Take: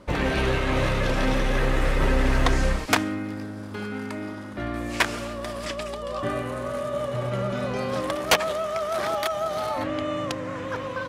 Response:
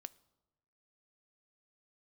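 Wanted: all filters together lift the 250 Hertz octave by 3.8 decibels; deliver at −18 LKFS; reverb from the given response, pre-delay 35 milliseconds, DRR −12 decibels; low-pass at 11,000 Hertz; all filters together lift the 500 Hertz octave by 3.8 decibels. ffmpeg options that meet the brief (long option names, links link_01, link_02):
-filter_complex "[0:a]lowpass=11000,equalizer=frequency=250:width_type=o:gain=3.5,equalizer=frequency=500:width_type=o:gain=4,asplit=2[link_01][link_02];[1:a]atrim=start_sample=2205,adelay=35[link_03];[link_02][link_03]afir=irnorm=-1:irlink=0,volume=17.5dB[link_04];[link_01][link_04]amix=inputs=2:normalize=0,volume=-6dB"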